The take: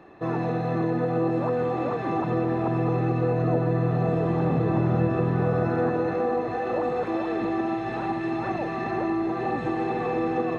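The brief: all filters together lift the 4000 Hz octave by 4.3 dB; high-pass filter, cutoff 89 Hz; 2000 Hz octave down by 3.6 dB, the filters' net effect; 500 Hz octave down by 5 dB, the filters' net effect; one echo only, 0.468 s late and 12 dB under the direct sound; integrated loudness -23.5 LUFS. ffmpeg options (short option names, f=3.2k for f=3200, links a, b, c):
-af "highpass=89,equalizer=f=500:t=o:g=-6,equalizer=f=2k:t=o:g=-6,equalizer=f=4k:t=o:g=6.5,aecho=1:1:468:0.251,volume=4.5dB"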